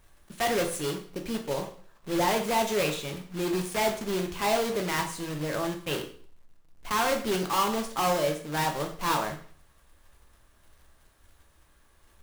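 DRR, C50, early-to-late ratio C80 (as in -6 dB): 3.5 dB, 9.5 dB, 13.5 dB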